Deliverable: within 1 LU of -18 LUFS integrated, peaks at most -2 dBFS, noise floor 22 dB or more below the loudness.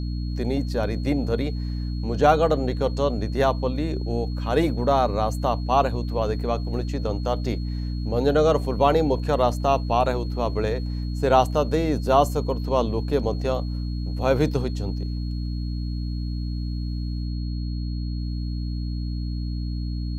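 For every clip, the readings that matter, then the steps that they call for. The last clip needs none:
hum 60 Hz; harmonics up to 300 Hz; hum level -25 dBFS; steady tone 4300 Hz; tone level -46 dBFS; loudness -24.5 LUFS; peak -4.5 dBFS; loudness target -18.0 LUFS
-> de-hum 60 Hz, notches 5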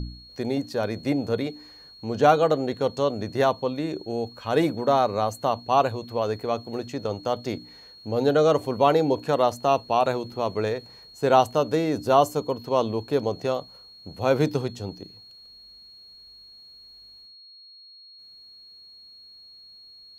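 hum none; steady tone 4300 Hz; tone level -46 dBFS
-> notch 4300 Hz, Q 30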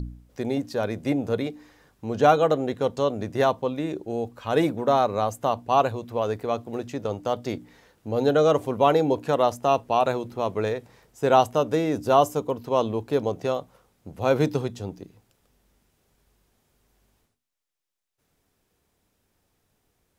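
steady tone none; loudness -24.5 LUFS; peak -5.0 dBFS; loudness target -18.0 LUFS
-> gain +6.5 dB; limiter -2 dBFS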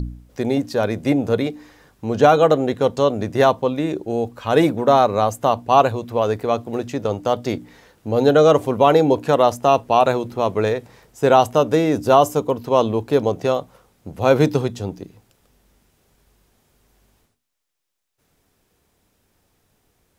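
loudness -18.5 LUFS; peak -2.0 dBFS; noise floor -67 dBFS

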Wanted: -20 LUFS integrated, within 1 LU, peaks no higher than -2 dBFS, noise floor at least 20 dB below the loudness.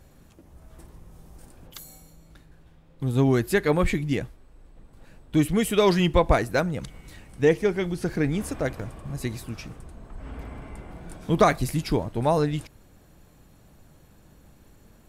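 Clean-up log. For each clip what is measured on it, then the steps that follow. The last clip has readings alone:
dropouts 1; longest dropout 3.8 ms; loudness -24.5 LUFS; peak -4.0 dBFS; loudness target -20.0 LUFS
-> interpolate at 8.79, 3.8 ms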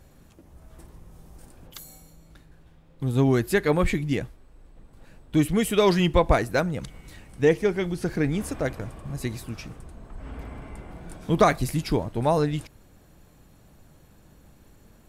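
dropouts 0; loudness -24.5 LUFS; peak -4.0 dBFS; loudness target -20.0 LUFS
-> gain +4.5 dB; limiter -2 dBFS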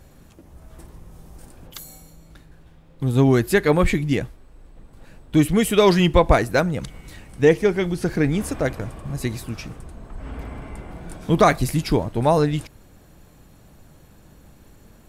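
loudness -20.0 LUFS; peak -2.0 dBFS; noise floor -50 dBFS

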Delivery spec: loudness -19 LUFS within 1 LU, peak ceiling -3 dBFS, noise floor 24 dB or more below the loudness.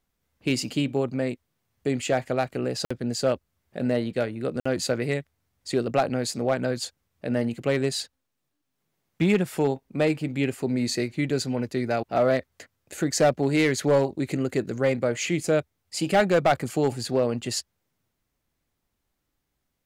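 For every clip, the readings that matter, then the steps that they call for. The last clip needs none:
clipped 0.3%; flat tops at -13.5 dBFS; dropouts 2; longest dropout 55 ms; loudness -26.0 LUFS; peak -13.5 dBFS; loudness target -19.0 LUFS
-> clip repair -13.5 dBFS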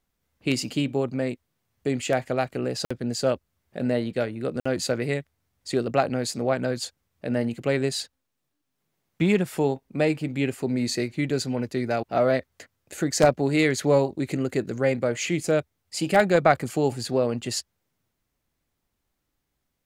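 clipped 0.0%; dropouts 2; longest dropout 55 ms
-> interpolate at 2.85/4.6, 55 ms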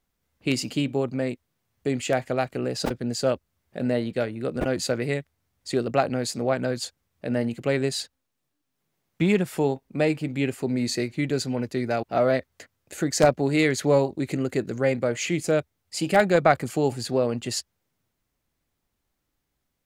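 dropouts 0; loudness -25.5 LUFS; peak -4.5 dBFS; loudness target -19.0 LUFS
-> gain +6.5 dB; limiter -3 dBFS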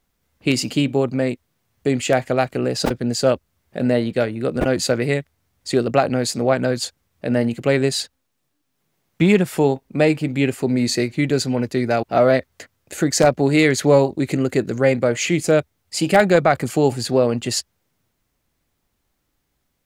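loudness -19.5 LUFS; peak -3.0 dBFS; noise floor -72 dBFS

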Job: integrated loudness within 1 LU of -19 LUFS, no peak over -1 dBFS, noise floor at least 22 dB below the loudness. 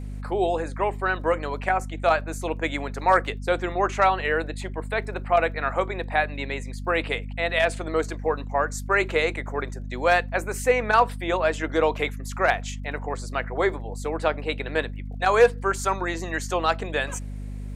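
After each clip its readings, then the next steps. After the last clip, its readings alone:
ticks 35/s; hum 50 Hz; harmonics up to 250 Hz; hum level -31 dBFS; loudness -25.0 LUFS; peak -6.0 dBFS; loudness target -19.0 LUFS
-> de-click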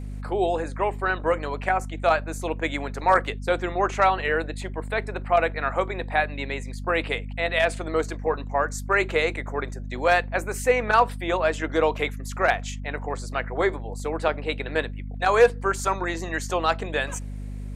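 ticks 0/s; hum 50 Hz; harmonics up to 250 Hz; hum level -31 dBFS
-> de-hum 50 Hz, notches 5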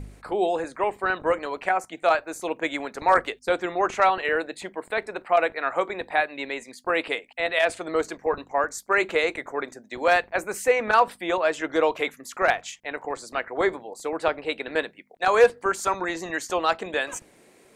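hum none; loudness -25.0 LUFS; peak -6.0 dBFS; loudness target -19.0 LUFS
-> gain +6 dB; limiter -1 dBFS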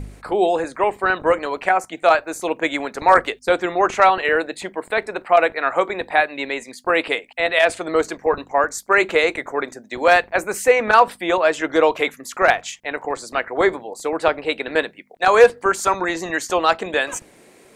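loudness -19.0 LUFS; peak -1.0 dBFS; noise floor -50 dBFS

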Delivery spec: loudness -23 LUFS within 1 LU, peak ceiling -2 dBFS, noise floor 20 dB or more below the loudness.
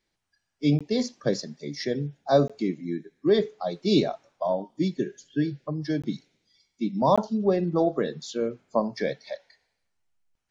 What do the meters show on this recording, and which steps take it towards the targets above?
dropouts 4; longest dropout 16 ms; loudness -27.0 LUFS; peak -8.0 dBFS; loudness target -23.0 LUFS
-> interpolate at 0.79/2.48/6.02/7.16, 16 ms; gain +4 dB

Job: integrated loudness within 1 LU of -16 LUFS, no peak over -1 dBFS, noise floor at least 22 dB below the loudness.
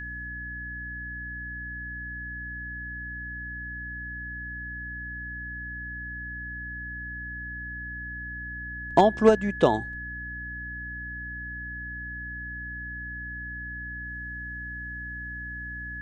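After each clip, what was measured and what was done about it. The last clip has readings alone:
hum 60 Hz; harmonics up to 300 Hz; hum level -38 dBFS; steady tone 1700 Hz; tone level -35 dBFS; loudness -31.5 LUFS; peak -5.5 dBFS; loudness target -16.0 LUFS
-> de-hum 60 Hz, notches 5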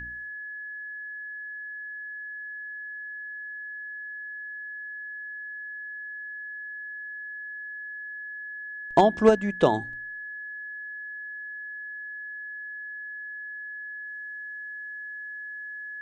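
hum none; steady tone 1700 Hz; tone level -35 dBFS
-> notch 1700 Hz, Q 30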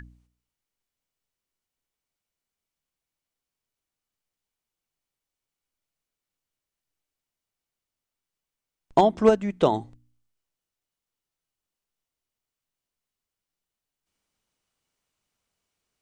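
steady tone none; loudness -22.5 LUFS; peak -5.5 dBFS; loudness target -16.0 LUFS
-> gain +6.5 dB; limiter -1 dBFS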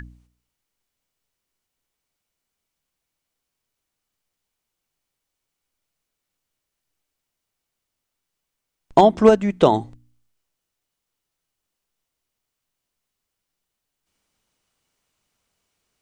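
loudness -16.5 LUFS; peak -1.0 dBFS; noise floor -82 dBFS

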